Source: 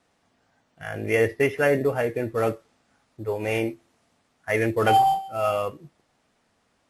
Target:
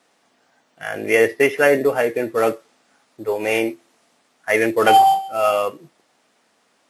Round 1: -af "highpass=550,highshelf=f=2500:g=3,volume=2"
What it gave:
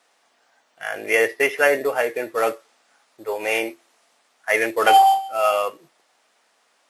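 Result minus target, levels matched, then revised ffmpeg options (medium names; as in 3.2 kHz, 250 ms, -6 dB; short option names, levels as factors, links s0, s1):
250 Hz band -6.5 dB
-af "highpass=250,highshelf=f=2500:g=3,volume=2"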